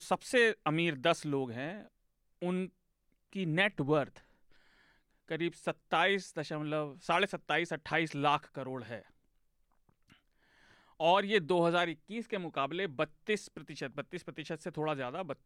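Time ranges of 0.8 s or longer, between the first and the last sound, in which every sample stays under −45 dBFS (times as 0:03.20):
0:04.18–0:05.29
0:09.02–0:11.00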